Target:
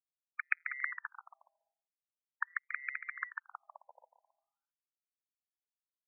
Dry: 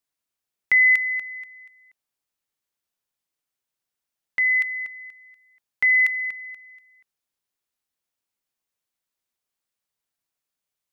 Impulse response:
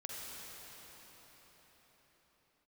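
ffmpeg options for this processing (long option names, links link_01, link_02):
-filter_complex "[0:a]lowpass=2500,afftfilt=real='re*lt(hypot(re,im),0.1)':imag='im*lt(hypot(re,im),0.1)':win_size=1024:overlap=0.75,agate=range=-33dB:threshold=-58dB:ratio=3:detection=peak,afwtdn=0.00141,asubboost=boost=4.5:cutoff=230,atempo=1.8,adynamicsmooth=sensitivity=3:basefreq=1800,aeval=exprs='val(0)*sin(2*PI*68*n/s)':channel_layout=same,asplit=2[link_01][link_02];[link_02]aecho=0:1:320|528|663.2|751.1|808.2:0.631|0.398|0.251|0.158|0.1[link_03];[link_01][link_03]amix=inputs=2:normalize=0,afftfilt=real='re*between(b*sr/1024,700*pow(1800/700,0.5+0.5*sin(2*PI*0.43*pts/sr))/1.41,700*pow(1800/700,0.5+0.5*sin(2*PI*0.43*pts/sr))*1.41)':imag='im*between(b*sr/1024,700*pow(1800/700,0.5+0.5*sin(2*PI*0.43*pts/sr))/1.41,700*pow(1800/700,0.5+0.5*sin(2*PI*0.43*pts/sr))*1.41)':win_size=1024:overlap=0.75,volume=15dB"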